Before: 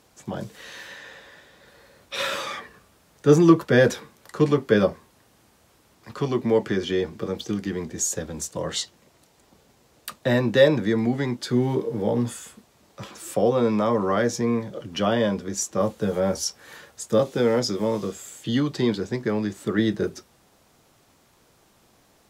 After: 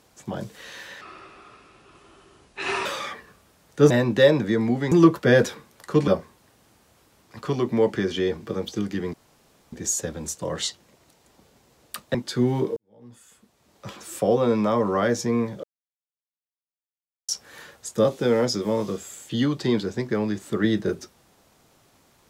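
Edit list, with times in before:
1.01–2.32 speed 71%
4.53–4.8 cut
7.86 insert room tone 0.59 s
10.28–11.29 move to 3.37
11.91–13.02 fade in quadratic
14.78–16.43 mute

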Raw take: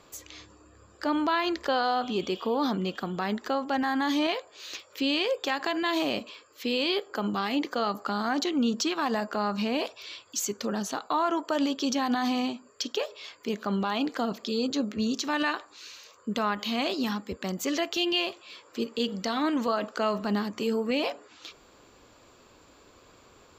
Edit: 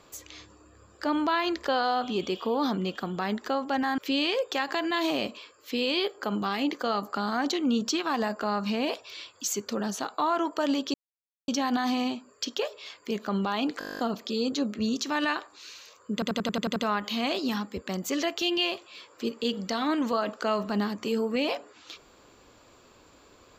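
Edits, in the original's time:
3.98–4.9 cut
11.86 insert silence 0.54 s
14.17 stutter 0.02 s, 11 plays
16.31 stutter 0.09 s, 8 plays

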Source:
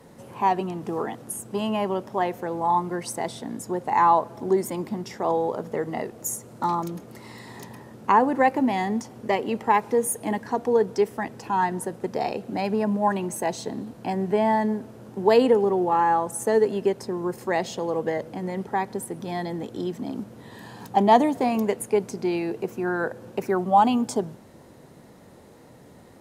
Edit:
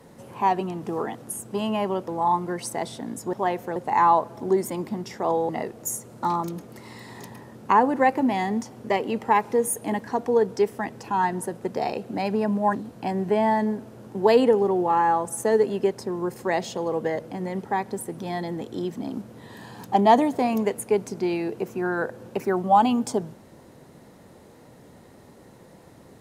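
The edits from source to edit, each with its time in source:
2.08–2.51 move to 3.76
5.49–5.88 cut
13.14–13.77 cut

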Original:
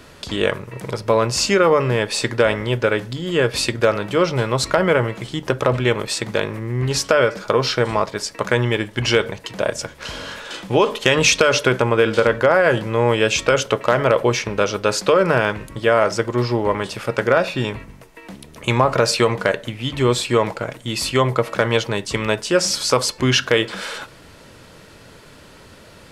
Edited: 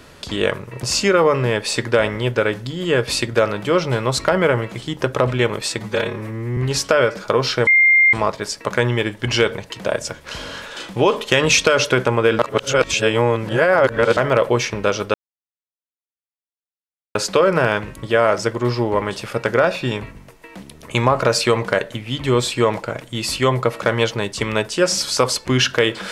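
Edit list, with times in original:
0.83–1.29 cut
6.25–6.77 stretch 1.5×
7.87 add tone 2110 Hz -9 dBFS 0.46 s
12.13–13.91 reverse
14.88 insert silence 2.01 s

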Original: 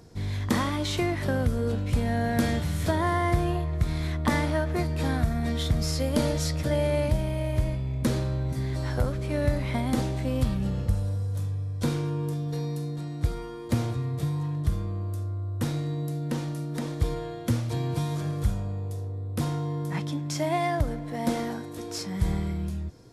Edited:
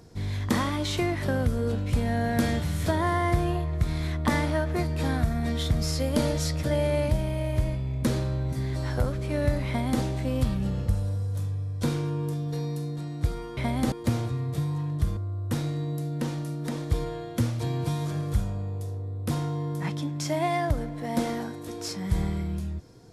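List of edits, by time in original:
9.67–10.02 copy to 13.57
14.82–15.27 cut

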